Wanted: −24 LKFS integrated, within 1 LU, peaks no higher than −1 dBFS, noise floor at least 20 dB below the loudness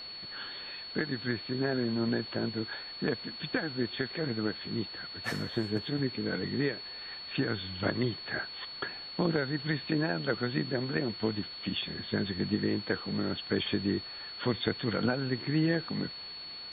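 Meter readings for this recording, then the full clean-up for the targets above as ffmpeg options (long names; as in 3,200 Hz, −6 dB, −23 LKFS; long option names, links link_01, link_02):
interfering tone 4,400 Hz; level of the tone −41 dBFS; background noise floor −44 dBFS; target noise floor −53 dBFS; integrated loudness −33.0 LKFS; sample peak −13.5 dBFS; target loudness −24.0 LKFS
→ -af "bandreject=frequency=4400:width=30"
-af "afftdn=noise_reduction=9:noise_floor=-44"
-af "volume=9dB"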